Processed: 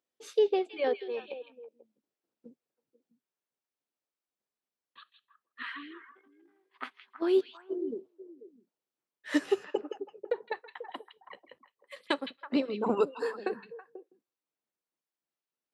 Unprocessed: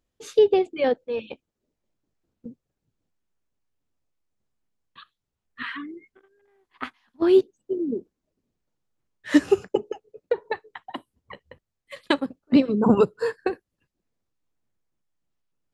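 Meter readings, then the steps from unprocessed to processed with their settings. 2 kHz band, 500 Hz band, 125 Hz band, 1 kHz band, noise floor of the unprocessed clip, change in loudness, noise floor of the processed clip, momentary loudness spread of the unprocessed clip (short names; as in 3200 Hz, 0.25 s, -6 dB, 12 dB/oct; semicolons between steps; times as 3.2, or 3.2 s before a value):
-6.0 dB, -8.0 dB, under -15 dB, -6.5 dB, -83 dBFS, -9.5 dB, under -85 dBFS, 20 LU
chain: HPF 340 Hz 12 dB/oct; notch 6800 Hz, Q 14; on a send: delay with a stepping band-pass 0.163 s, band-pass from 3100 Hz, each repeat -1.4 oct, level -6.5 dB; on the sum: gain -6.5 dB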